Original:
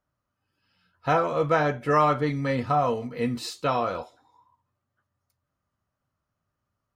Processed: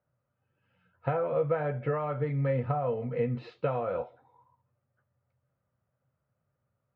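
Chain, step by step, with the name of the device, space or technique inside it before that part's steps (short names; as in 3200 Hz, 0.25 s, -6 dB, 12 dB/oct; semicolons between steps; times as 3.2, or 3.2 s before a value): bass amplifier (compressor 6:1, threshold -29 dBFS, peak gain reduction 12.5 dB; speaker cabinet 69–2400 Hz, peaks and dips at 130 Hz +9 dB, 300 Hz -6 dB, 510 Hz +8 dB, 1100 Hz -6 dB, 1800 Hz -3 dB)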